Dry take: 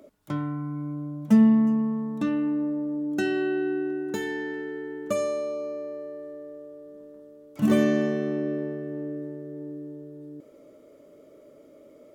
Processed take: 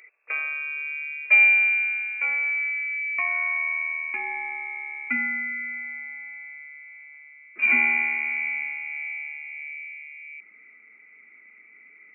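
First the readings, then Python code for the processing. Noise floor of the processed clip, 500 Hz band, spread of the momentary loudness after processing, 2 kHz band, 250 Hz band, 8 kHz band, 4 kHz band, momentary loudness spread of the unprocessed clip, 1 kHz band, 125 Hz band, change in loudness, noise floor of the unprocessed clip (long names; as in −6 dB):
−53 dBFS, −22.5 dB, 21 LU, +18.0 dB, −22.0 dB, below −30 dB, can't be measured, 20 LU, +2.0 dB, below −35 dB, +4.0 dB, −53 dBFS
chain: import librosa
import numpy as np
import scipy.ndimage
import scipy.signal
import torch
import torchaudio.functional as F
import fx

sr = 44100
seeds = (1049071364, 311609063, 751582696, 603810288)

y = fx.freq_invert(x, sr, carrier_hz=2600)
y = fx.hum_notches(y, sr, base_hz=50, count=3)
y = fx.filter_sweep_highpass(y, sr, from_hz=480.0, to_hz=230.0, start_s=1.46, end_s=3.1, q=3.1)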